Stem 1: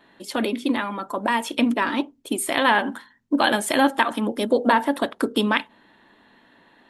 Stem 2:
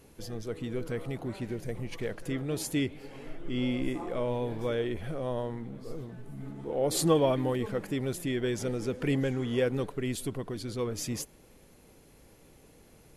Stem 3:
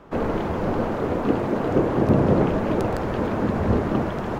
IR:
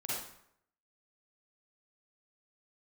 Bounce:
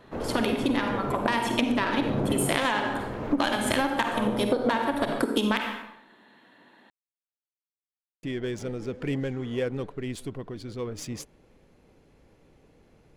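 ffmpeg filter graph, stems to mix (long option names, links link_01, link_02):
-filter_complex "[0:a]highpass=130,aeval=exprs='0.75*(cos(1*acos(clip(val(0)/0.75,-1,1)))-cos(1*PI/2))+0.0531*(cos(7*acos(clip(val(0)/0.75,-1,1)))-cos(7*PI/2))':channel_layout=same,volume=1.5dB,asplit=3[link_01][link_02][link_03];[link_02]volume=-5dB[link_04];[1:a]highshelf=frequency=9100:gain=8.5,adynamicsmooth=sensitivity=7:basefreq=3600,volume=-1dB,asplit=3[link_05][link_06][link_07];[link_05]atrim=end=5.23,asetpts=PTS-STARTPTS,afade=type=out:start_time=5.226:duration=0.004:curve=hsin[link_08];[link_06]atrim=start=5.23:end=8.23,asetpts=PTS-STARTPTS,volume=0[link_09];[link_07]atrim=start=8.23,asetpts=PTS-STARTPTS,afade=type=in:duration=0.004:curve=hsin[link_10];[link_08][link_09][link_10]concat=n=3:v=0:a=1[link_11];[2:a]volume=-11.5dB,asplit=2[link_12][link_13];[link_13]volume=-4.5dB[link_14];[link_03]apad=whole_len=193927[link_15];[link_12][link_15]sidechaincompress=threshold=-26dB:ratio=8:attack=16:release=493[link_16];[3:a]atrim=start_sample=2205[link_17];[link_04][link_14]amix=inputs=2:normalize=0[link_18];[link_18][link_17]afir=irnorm=-1:irlink=0[link_19];[link_01][link_11][link_16][link_19]amix=inputs=4:normalize=0,acompressor=threshold=-20dB:ratio=16"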